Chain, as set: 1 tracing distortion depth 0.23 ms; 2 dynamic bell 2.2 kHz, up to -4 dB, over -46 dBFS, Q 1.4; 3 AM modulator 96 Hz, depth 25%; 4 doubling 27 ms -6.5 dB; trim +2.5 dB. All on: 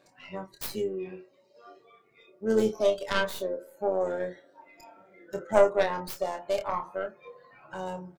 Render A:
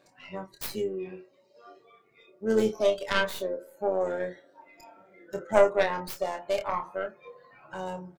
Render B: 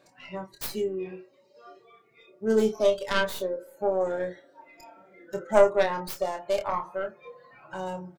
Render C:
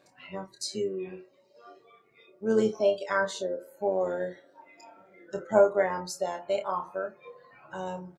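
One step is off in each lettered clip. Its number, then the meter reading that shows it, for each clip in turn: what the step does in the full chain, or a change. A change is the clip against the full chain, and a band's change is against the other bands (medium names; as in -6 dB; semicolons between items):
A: 2, 2 kHz band +2.0 dB; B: 3, loudness change +2.0 LU; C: 1, 8 kHz band +3.0 dB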